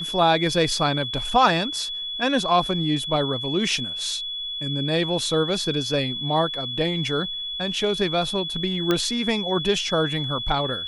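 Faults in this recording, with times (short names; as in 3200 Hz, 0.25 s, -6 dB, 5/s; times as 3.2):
tone 3400 Hz -28 dBFS
8.91 pop -8 dBFS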